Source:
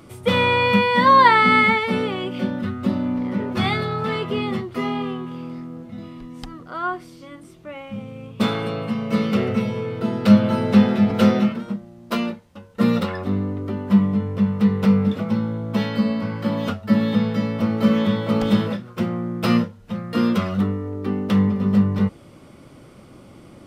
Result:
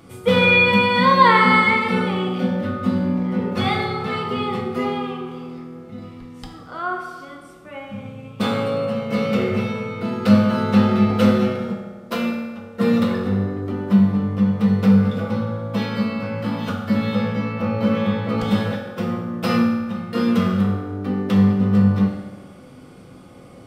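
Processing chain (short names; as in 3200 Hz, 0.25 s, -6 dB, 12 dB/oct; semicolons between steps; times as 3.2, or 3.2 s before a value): 17.32–18.38 high shelf 4100 Hz -8.5 dB; reverb RT60 1.5 s, pre-delay 3 ms, DRR -1 dB; gain -2 dB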